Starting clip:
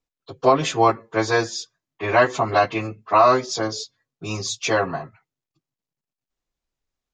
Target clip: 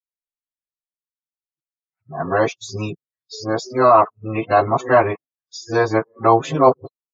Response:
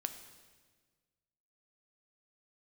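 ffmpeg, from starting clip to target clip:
-filter_complex "[0:a]areverse,afftdn=nr=34:nf=-32,acrossover=split=120|1500[s0][s1][s2];[s2]acompressor=threshold=0.0158:ratio=6[s3];[s0][s1][s3]amix=inputs=3:normalize=0,volume=1.5"

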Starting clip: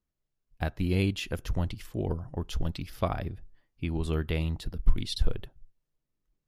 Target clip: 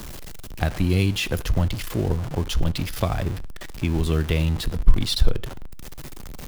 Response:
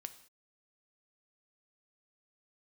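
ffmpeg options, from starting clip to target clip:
-filter_complex "[0:a]aeval=exprs='val(0)+0.5*0.0158*sgn(val(0))':c=same,acrossover=split=150|3000[s0][s1][s2];[s1]acompressor=threshold=0.0355:ratio=6[s3];[s0][s3][s2]amix=inputs=3:normalize=0,asplit=2[s4][s5];[1:a]atrim=start_sample=2205,afade=t=out:st=0.18:d=0.01,atrim=end_sample=8379[s6];[s5][s6]afir=irnorm=-1:irlink=0,volume=0.841[s7];[s4][s7]amix=inputs=2:normalize=0,volume=1.58"

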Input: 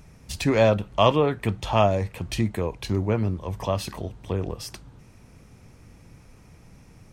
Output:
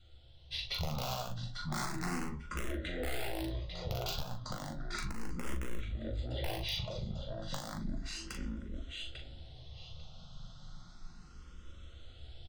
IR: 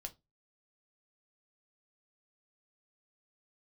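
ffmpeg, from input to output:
-filter_complex "[0:a]adynamicequalizer=threshold=0.00794:dfrequency=840:dqfactor=5.8:tfrequency=840:tqfactor=5.8:attack=5:release=100:ratio=0.375:range=2:mode=cutabove:tftype=bell,aecho=1:1:483|966|1449:0.355|0.071|0.0142,asetrate=25181,aresample=44100,equalizer=f=3900:t=o:w=0.62:g=13,dynaudnorm=f=150:g=11:m=2.24,aeval=exprs='(mod(3.55*val(0)+1,2)-1)/3.55':c=same[s0];[1:a]atrim=start_sample=2205[s1];[s0][s1]afir=irnorm=-1:irlink=0,acompressor=threshold=0.0562:ratio=5,asplit=2[s2][s3];[s3]adelay=40,volume=0.473[s4];[s2][s4]amix=inputs=2:normalize=0,asoftclip=type=tanh:threshold=0.1,asplit=2[s5][s6];[s6]afreqshift=0.33[s7];[s5][s7]amix=inputs=2:normalize=1,volume=0.562"

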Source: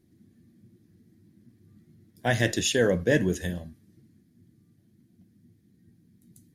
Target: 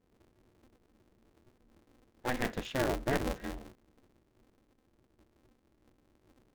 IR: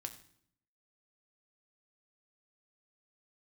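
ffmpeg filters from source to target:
-af "lowpass=2200,aeval=exprs='val(0)*sgn(sin(2*PI*130*n/s))':c=same,volume=0.376"

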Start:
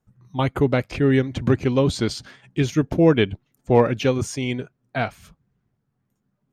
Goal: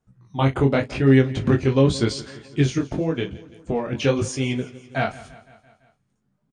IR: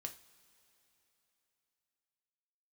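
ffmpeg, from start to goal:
-filter_complex "[0:a]asettb=1/sr,asplit=3[s0][s1][s2];[s0]atrim=end=2.784[s3];[s1]atrim=start=2.78:end=3.93,asetpts=PTS-STARTPTS,afade=t=in:d=0.004:c=qsin,afade=t=out:st=1.146:d=0.004:c=qsin,acompressor=threshold=0.0794:ratio=6[s4];[s2]atrim=start=3.926[s5];[s3][s4]acrossfade=d=0.004:c1=hsin:c2=qsin[s6];[s6][s5]acrossfade=d=0.004:c1=qsin:c2=hsin,flanger=delay=15:depth=7.6:speed=0.89,asplit=2[s7][s8];[s8]adelay=37,volume=0.2[s9];[s7][s9]amix=inputs=2:normalize=0,asplit=2[s10][s11];[s11]aecho=0:1:169|338|507|676|845:0.112|0.0673|0.0404|0.0242|0.0145[s12];[s10][s12]amix=inputs=2:normalize=0,aresample=22050,aresample=44100,volume=1.5"

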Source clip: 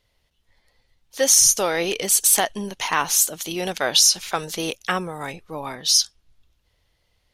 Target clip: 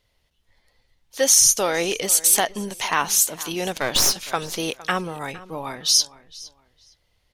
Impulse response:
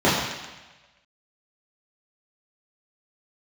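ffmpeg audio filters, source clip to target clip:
-filter_complex "[0:a]asettb=1/sr,asplit=3[s0][s1][s2];[s0]atrim=end=3.754[s3];[s1]atrim=start=3.75:end=4.27,asetpts=PTS-STARTPTS,afade=t=in:d=0.004:c=qsin,afade=t=out:st=0.516:d=0.004:c=qsin,aeval=exprs='clip(val(0),-1,0.0501)':c=same[s4];[s2]atrim=start=4.266[s5];[s3][s4]acrossfade=d=0.004:c1=hsin:c2=qsin[s6];[s6][s5]acrossfade=d=0.004:c1=qsin:c2=hsin,asplit=2[s7][s8];[s8]adelay=461,lowpass=f=4300:p=1,volume=0.126,asplit=2[s9][s10];[s10]adelay=461,lowpass=f=4300:p=1,volume=0.25[s11];[s7][s9][s11]amix=inputs=3:normalize=0"

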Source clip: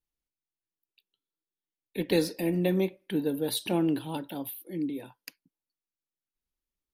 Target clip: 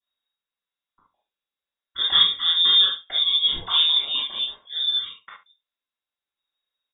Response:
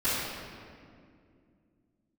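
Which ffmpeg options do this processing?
-filter_complex "[0:a]lowpass=f=3200:t=q:w=0.5098,lowpass=f=3200:t=q:w=0.6013,lowpass=f=3200:t=q:w=0.9,lowpass=f=3200:t=q:w=2.563,afreqshift=-3800,aecho=1:1:47|70:0.2|0.141[s0];[1:a]atrim=start_sample=2205,atrim=end_sample=3528[s1];[s0][s1]afir=irnorm=-1:irlink=0"

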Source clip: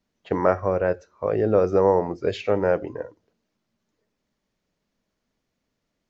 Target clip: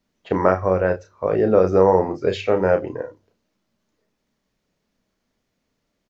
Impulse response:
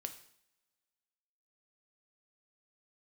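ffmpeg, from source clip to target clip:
-filter_complex "[0:a]asplit=2[s0][s1];[s1]adelay=32,volume=0.447[s2];[s0][s2]amix=inputs=2:normalize=0,bandreject=f=49.5:t=h:w=4,bandreject=f=99:t=h:w=4,bandreject=f=148.5:t=h:w=4,volume=1.41"

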